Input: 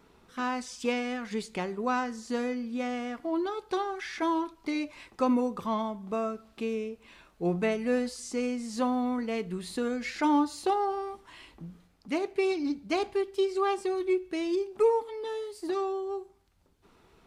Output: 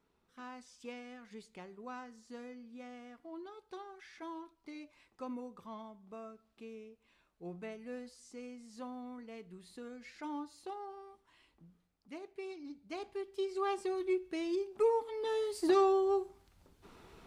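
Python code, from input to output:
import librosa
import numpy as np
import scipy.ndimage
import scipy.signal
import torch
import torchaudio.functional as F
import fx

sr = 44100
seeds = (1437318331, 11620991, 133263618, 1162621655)

y = fx.gain(x, sr, db=fx.line((12.68, -17.0), (13.76, -6.0), (14.88, -6.0), (15.56, 3.5)))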